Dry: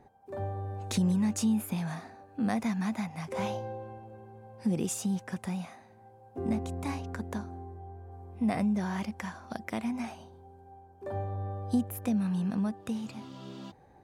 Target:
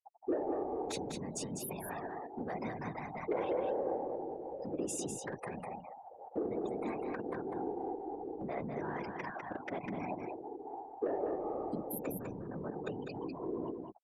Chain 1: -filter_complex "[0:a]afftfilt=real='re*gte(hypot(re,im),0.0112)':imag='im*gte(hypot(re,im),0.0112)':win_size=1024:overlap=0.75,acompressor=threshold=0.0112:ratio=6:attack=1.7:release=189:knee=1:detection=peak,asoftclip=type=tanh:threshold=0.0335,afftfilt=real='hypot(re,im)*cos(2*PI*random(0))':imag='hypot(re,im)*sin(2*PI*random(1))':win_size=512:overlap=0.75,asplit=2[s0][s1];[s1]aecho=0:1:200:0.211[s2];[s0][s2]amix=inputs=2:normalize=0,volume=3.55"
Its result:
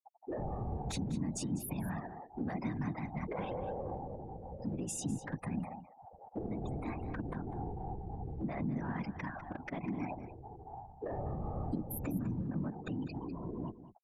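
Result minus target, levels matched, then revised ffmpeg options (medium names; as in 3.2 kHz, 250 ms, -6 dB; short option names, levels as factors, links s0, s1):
500 Hz band -6.5 dB; echo-to-direct -8.5 dB
-filter_complex "[0:a]afftfilt=real='re*gte(hypot(re,im),0.0112)':imag='im*gte(hypot(re,im),0.0112)':win_size=1024:overlap=0.75,acompressor=threshold=0.0112:ratio=6:attack=1.7:release=189:knee=1:detection=peak,highpass=f=390:t=q:w=2.8,asoftclip=type=tanh:threshold=0.0335,afftfilt=real='hypot(re,im)*cos(2*PI*random(0))':imag='hypot(re,im)*sin(2*PI*random(1))':win_size=512:overlap=0.75,asplit=2[s0][s1];[s1]aecho=0:1:200:0.562[s2];[s0][s2]amix=inputs=2:normalize=0,volume=3.55"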